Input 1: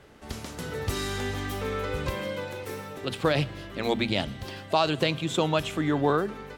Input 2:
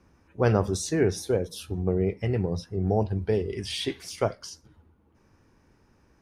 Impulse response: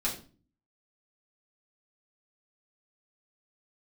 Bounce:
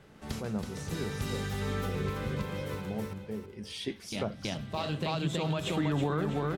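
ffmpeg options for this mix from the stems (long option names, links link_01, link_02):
-filter_complex "[0:a]equalizer=frequency=160:width=2.3:gain=9,volume=-5.5dB,asplit=3[link_01][link_02][link_03];[link_01]atrim=end=2.81,asetpts=PTS-STARTPTS,afade=type=out:start_time=2.806:duration=0.004:curve=hsin[link_04];[link_02]atrim=start=2.81:end=4.12,asetpts=PTS-STARTPTS,volume=0[link_05];[link_03]atrim=start=4.12,asetpts=PTS-STARTPTS,afade=type=in:duration=0.004:curve=hsin[link_06];[link_04][link_05][link_06]concat=n=3:v=0:a=1,asplit=3[link_07][link_08][link_09];[link_08]volume=-20dB[link_10];[link_09]volume=-7dB[link_11];[1:a]equalizer=frequency=210:width=5:gain=13,volume=-9dB,afade=type=in:start_time=3.52:duration=0.47:silence=0.251189,asplit=3[link_12][link_13][link_14];[link_13]volume=-21.5dB[link_15];[link_14]apad=whole_len=289821[link_16];[link_07][link_16]sidechaincompress=threshold=-49dB:ratio=8:attack=7:release=1000[link_17];[2:a]atrim=start_sample=2205[link_18];[link_10][link_18]afir=irnorm=-1:irlink=0[link_19];[link_11][link_15]amix=inputs=2:normalize=0,aecho=0:1:325|650|975|1300|1625|1950:1|0.4|0.16|0.064|0.0256|0.0102[link_20];[link_17][link_12][link_19][link_20]amix=inputs=4:normalize=0,dynaudnorm=framelen=130:gausssize=3:maxgain=4dB,alimiter=limit=-21dB:level=0:latency=1:release=137"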